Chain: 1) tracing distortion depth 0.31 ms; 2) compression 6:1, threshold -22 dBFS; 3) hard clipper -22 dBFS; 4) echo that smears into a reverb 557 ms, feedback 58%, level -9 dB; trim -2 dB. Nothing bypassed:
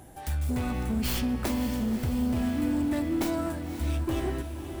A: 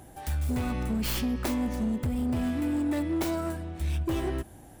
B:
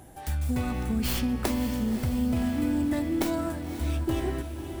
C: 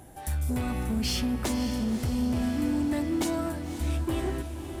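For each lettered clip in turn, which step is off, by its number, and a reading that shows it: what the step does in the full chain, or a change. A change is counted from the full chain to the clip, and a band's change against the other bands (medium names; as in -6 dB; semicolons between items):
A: 4, echo-to-direct -7.0 dB to none; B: 3, distortion -17 dB; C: 1, 4 kHz band +3.5 dB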